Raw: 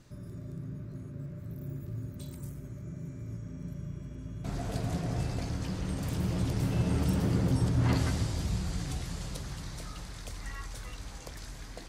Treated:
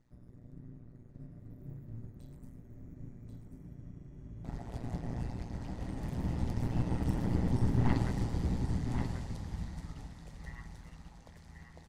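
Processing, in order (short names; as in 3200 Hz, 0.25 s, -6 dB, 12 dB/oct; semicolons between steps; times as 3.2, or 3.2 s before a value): small resonant body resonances 850/1900 Hz, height 10 dB, ringing for 25 ms; AM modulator 120 Hz, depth 95%; tilt -1.5 dB/oct; on a send: echo 1.088 s -4.5 dB; on the sum: upward expander 1.5:1, over -46 dBFS; gain -1.5 dB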